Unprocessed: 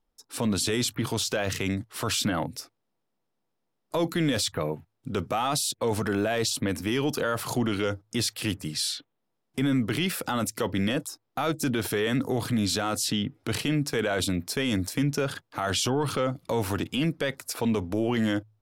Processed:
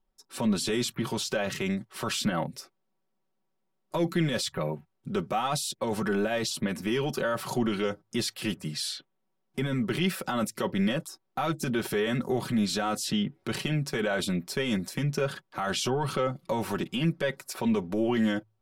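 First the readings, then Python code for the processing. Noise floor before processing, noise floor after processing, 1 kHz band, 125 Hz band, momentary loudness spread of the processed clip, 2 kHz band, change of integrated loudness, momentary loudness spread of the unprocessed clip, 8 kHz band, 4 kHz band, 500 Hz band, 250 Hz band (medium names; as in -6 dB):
-79 dBFS, -77 dBFS, -1.0 dB, -2.0 dB, 6 LU, -1.5 dB, -2.0 dB, 6 LU, -5.0 dB, -3.0 dB, -1.0 dB, -1.0 dB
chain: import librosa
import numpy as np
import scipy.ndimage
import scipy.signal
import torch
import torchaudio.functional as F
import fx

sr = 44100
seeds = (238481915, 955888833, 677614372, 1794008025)

y = fx.high_shelf(x, sr, hz=4100.0, db=-5.5)
y = y + 0.73 * np.pad(y, (int(5.3 * sr / 1000.0), 0))[:len(y)]
y = y * 10.0 ** (-2.5 / 20.0)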